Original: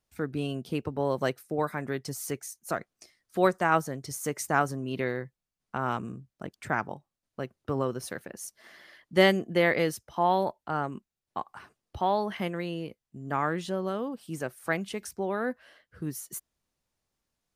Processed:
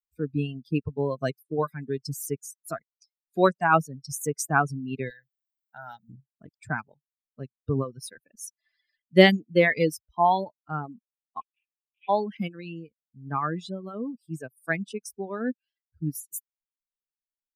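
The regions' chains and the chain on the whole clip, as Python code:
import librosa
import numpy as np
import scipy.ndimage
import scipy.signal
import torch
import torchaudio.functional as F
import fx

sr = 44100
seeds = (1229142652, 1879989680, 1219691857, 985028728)

y = fx.chain(x, sr, fx.tilt_eq(slope=2.5),
    fx.fixed_phaser(hz=1700.0, stages=8), at=(5.1, 6.09))
y = fx.chain(y, sr, fx.cvsd(bps=16000),
    fx.steep_highpass(hz=2200.0, slope=36),
    fx.air_absorb(metres=72.0), at=(11.41, 12.09))
y = fx.bin_expand(y, sr, power=2.0)
y = fx.dereverb_blind(y, sr, rt60_s=0.65)
y = fx.dynamic_eq(y, sr, hz=160.0, q=1.8, threshold_db=-52.0, ratio=4.0, max_db=4)
y = y * 10.0 ** (7.0 / 20.0)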